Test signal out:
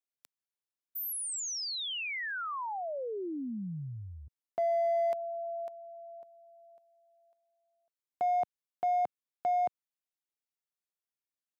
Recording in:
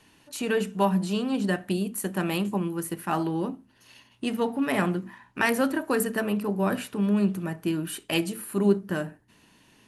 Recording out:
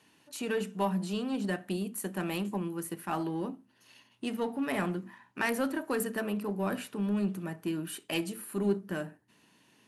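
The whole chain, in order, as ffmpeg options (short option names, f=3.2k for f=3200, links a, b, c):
-filter_complex "[0:a]highpass=130,asplit=2[a][b];[b]volume=24dB,asoftclip=hard,volume=-24dB,volume=-7dB[c];[a][c]amix=inputs=2:normalize=0,volume=-8.5dB"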